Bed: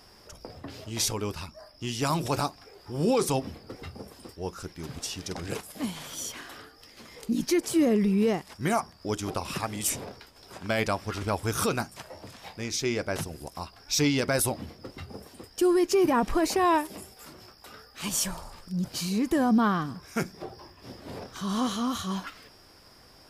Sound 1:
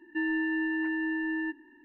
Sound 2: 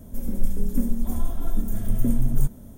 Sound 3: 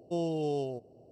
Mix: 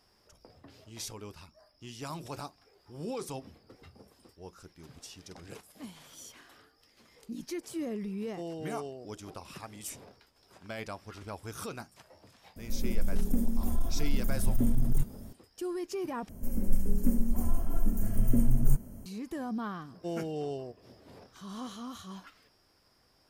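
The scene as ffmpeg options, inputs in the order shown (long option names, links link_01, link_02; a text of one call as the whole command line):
ffmpeg -i bed.wav -i cue0.wav -i cue1.wav -i cue2.wav -filter_complex "[3:a]asplit=2[link_01][link_02];[2:a]asplit=2[link_03][link_04];[0:a]volume=-13dB[link_05];[link_01]highpass=130[link_06];[link_03]asoftclip=type=tanh:threshold=-13.5dB[link_07];[link_04]asuperstop=centerf=3600:order=8:qfactor=4.3[link_08];[link_05]asplit=2[link_09][link_10];[link_09]atrim=end=16.294[link_11];[link_08]atrim=end=2.77,asetpts=PTS-STARTPTS,volume=-3dB[link_12];[link_10]atrim=start=19.056[link_13];[link_06]atrim=end=1.11,asetpts=PTS-STARTPTS,volume=-7.5dB,afade=type=in:duration=0.004:curve=hsin,afade=type=out:start_time=1.106:duration=0.004:curve=hsin,adelay=364266S[link_14];[link_07]atrim=end=2.77,asetpts=PTS-STARTPTS,volume=-2.5dB,afade=type=in:duration=0.004:curve=hsin,afade=type=out:start_time=2.766:duration=0.004:curve=hsin,adelay=12560[link_15];[link_02]atrim=end=1.11,asetpts=PTS-STARTPTS,volume=-4dB,afade=type=in:duration=0.004:curve=hsin,afade=type=out:start_time=1.106:duration=0.004:curve=hsin,adelay=19930[link_16];[link_11][link_12]acrossfade=duration=0.004:curve1=hsin:curve2=hsin[link_17];[link_17][link_13]acrossfade=duration=0.004:curve1=hsin:curve2=hsin[link_18];[link_18][link_14][link_15][link_16]amix=inputs=4:normalize=0" out.wav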